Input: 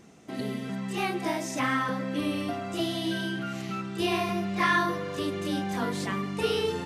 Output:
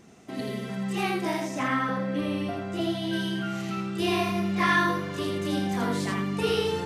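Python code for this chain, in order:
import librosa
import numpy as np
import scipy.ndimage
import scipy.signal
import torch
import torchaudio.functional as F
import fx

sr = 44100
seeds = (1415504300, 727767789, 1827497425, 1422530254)

y = fx.high_shelf(x, sr, hz=3500.0, db=-8.5, at=(1.4, 3.13))
y = y + 10.0 ** (-4.0 / 20.0) * np.pad(y, (int(82 * sr / 1000.0), 0))[:len(y)]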